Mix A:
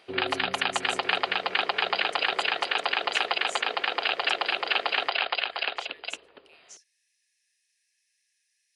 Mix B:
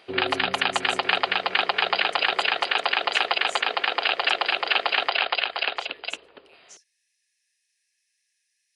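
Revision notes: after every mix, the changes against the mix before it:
first sound +3.5 dB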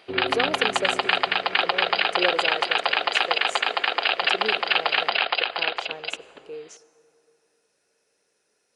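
speech: remove brick-wall FIR high-pass 1.6 kHz; reverb: on, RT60 2.8 s

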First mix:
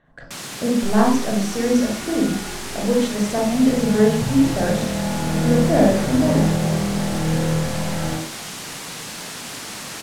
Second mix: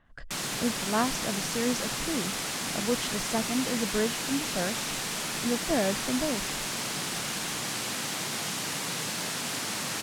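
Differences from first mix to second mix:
second sound: muted; reverb: off

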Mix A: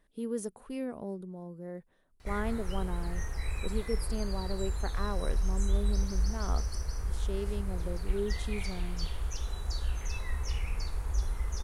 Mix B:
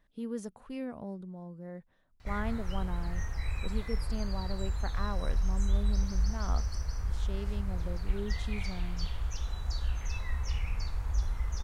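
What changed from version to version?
master: add fifteen-band graphic EQ 100 Hz +4 dB, 400 Hz -7 dB, 10 kHz -12 dB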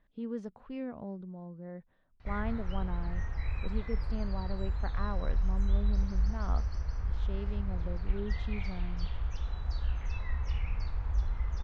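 master: add distance through air 220 m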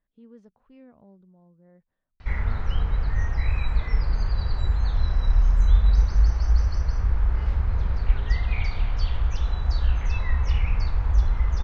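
speech -11.5 dB; background +10.5 dB

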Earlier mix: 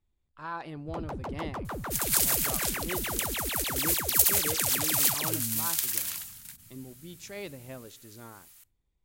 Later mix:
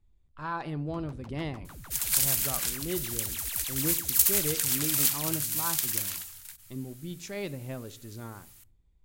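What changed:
speech: send +8.0 dB; first sound: add amplifier tone stack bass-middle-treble 5-5-5; master: add bass shelf 180 Hz +10 dB

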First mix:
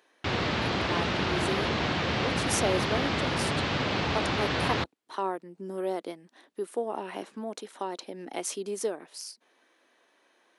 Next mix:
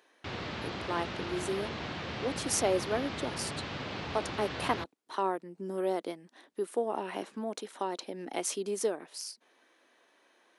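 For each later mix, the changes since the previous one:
background -10.0 dB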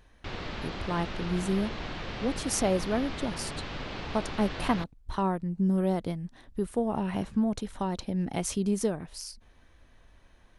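speech: remove Chebyshev high-pass 330 Hz, order 3; master: remove high-pass 77 Hz 24 dB/octave

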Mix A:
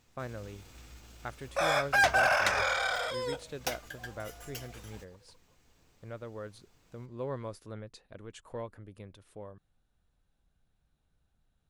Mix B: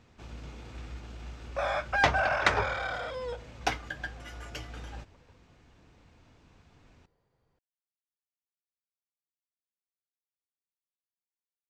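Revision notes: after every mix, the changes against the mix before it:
speech: muted; first sound +10.5 dB; master: add tape spacing loss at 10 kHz 21 dB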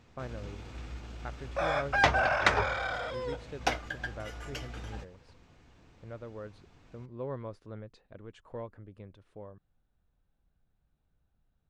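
speech: unmuted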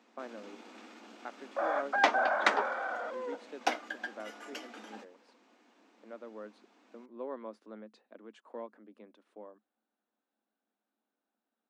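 second sound: add Savitzky-Golay filter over 41 samples; master: add rippled Chebyshev high-pass 210 Hz, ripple 3 dB

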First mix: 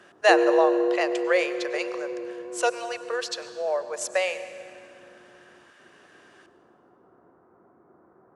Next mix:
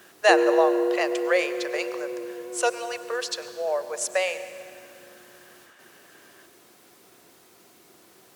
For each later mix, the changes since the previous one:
background: remove steep low-pass 1.4 kHz 36 dB/octave; master: add treble shelf 9.7 kHz +9.5 dB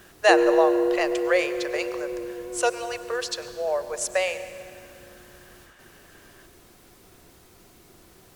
master: remove Bessel high-pass 270 Hz, order 2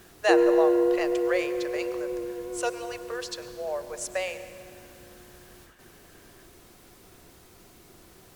speech -6.0 dB

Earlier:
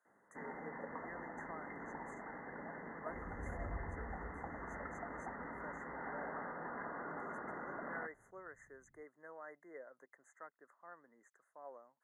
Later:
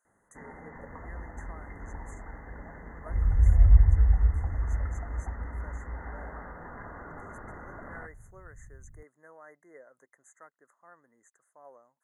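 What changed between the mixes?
second sound +9.0 dB; master: remove three-band isolator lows -21 dB, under 160 Hz, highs -13 dB, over 3.6 kHz

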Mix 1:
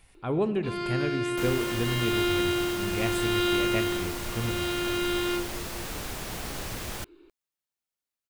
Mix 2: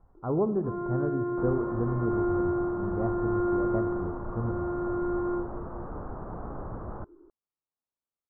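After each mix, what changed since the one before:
master: add steep low-pass 1.3 kHz 48 dB/octave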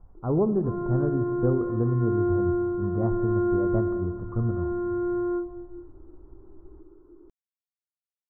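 second sound: muted; master: add tilt EQ -2 dB/octave

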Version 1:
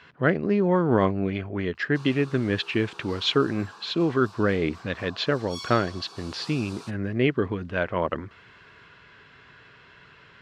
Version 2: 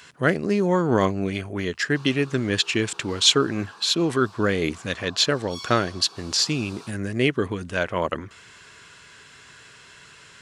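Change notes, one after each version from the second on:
speech: remove distance through air 320 m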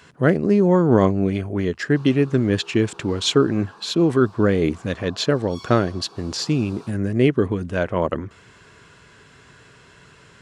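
master: add tilt shelf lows +6.5 dB, about 1.1 kHz

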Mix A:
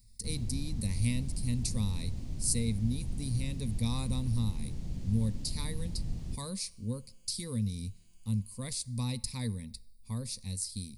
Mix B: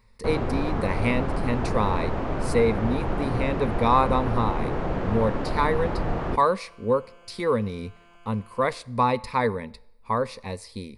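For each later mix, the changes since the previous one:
first sound +6.5 dB; second sound +5.0 dB; master: remove FFT filter 100 Hz 0 dB, 230 Hz -6 dB, 410 Hz -22 dB, 1.4 kHz -30 dB, 2 kHz -18 dB, 3.1 kHz -9 dB, 4.6 kHz +3 dB, 8.9 kHz +12 dB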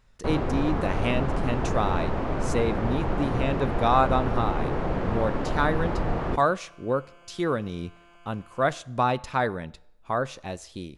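speech: remove rippled EQ curve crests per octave 0.92, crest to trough 13 dB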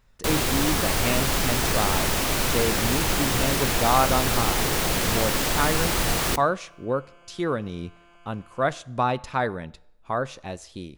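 first sound: remove low-pass 1 kHz 12 dB/octave

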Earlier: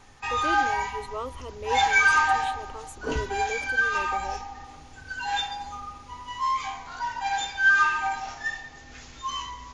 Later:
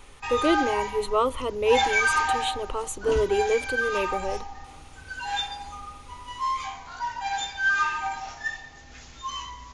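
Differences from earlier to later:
speech +11.0 dB; background: send off

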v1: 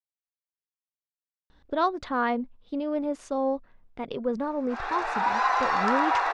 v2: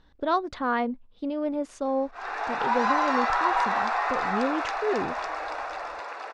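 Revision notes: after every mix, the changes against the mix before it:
speech: entry -1.50 s; background: entry -2.55 s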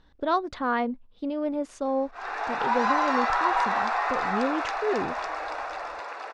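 no change

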